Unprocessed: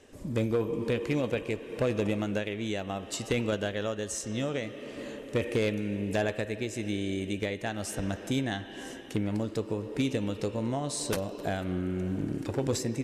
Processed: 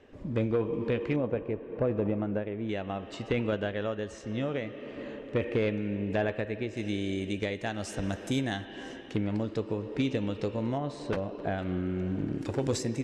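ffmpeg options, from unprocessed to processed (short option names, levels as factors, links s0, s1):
-af "asetnsamples=n=441:p=0,asendcmd='1.16 lowpass f 1200;2.69 lowpass f 2700;6.77 lowpass f 6600;8.04 lowpass f 11000;8.65 lowpass f 4300;10.78 lowpass f 2300;11.58 lowpass f 3900;12.41 lowpass f 8300',lowpass=2800"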